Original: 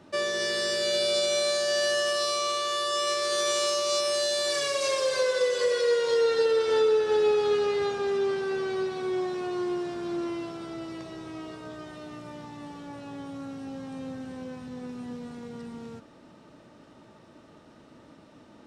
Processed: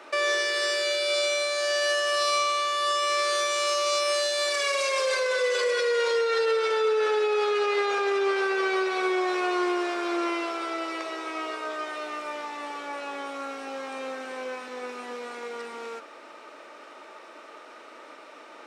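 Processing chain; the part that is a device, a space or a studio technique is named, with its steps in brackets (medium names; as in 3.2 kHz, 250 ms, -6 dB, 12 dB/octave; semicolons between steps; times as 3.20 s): laptop speaker (high-pass 400 Hz 24 dB/octave; peaking EQ 1.3 kHz +6.5 dB 0.6 oct; peaking EQ 2.3 kHz +9 dB 0.38 oct; peak limiter -26 dBFS, peak gain reduction 12 dB); trim +8 dB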